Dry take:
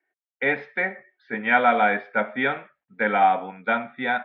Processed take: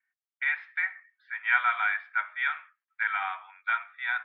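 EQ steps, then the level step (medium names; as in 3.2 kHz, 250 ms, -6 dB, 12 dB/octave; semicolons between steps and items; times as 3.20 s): steep high-pass 1.1 kHz 36 dB/octave; low-pass 3.2 kHz 6 dB/octave; distance through air 70 m; -1.0 dB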